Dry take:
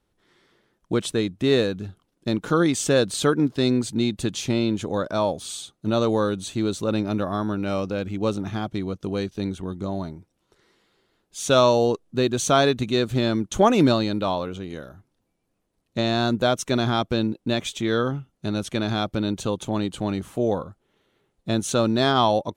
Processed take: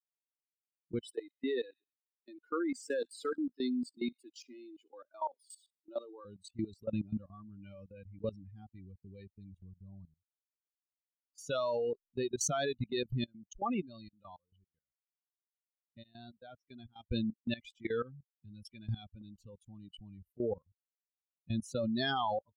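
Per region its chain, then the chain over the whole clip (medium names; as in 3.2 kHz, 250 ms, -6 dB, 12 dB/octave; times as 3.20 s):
1.00–6.25 s: companding laws mixed up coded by mu + rippled Chebyshev high-pass 240 Hz, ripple 3 dB + feedback echo behind a high-pass 66 ms, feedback 67%, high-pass 1.5 kHz, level -11 dB
13.25–17.06 s: low-pass 7.4 kHz + tremolo saw up 3.6 Hz, depth 85%
whole clip: expander on every frequency bin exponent 3; treble shelf 8 kHz -11 dB; level held to a coarse grid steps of 18 dB; trim +3.5 dB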